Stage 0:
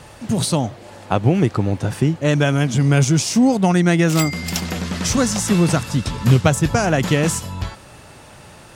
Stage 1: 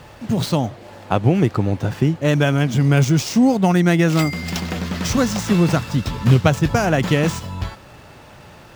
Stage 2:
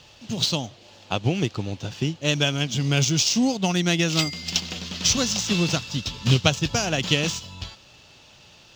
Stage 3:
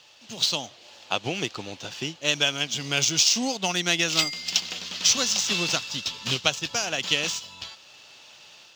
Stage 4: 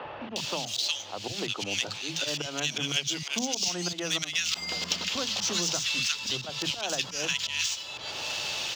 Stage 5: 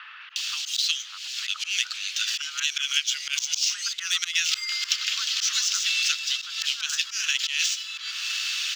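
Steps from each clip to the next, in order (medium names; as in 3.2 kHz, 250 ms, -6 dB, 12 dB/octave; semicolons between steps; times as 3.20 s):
median filter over 5 samples
high-order bell 4.3 kHz +14.5 dB; upward expansion 1.5:1, over -23 dBFS; trim -5.5 dB
high-pass 820 Hz 6 dB/octave; level rider gain up to 5 dB; trim -2 dB
slow attack 180 ms; three bands offset in time mids, lows, highs 40/360 ms, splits 210/1500 Hz; three bands compressed up and down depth 100%
steep high-pass 1.3 kHz 48 dB/octave; trim +4.5 dB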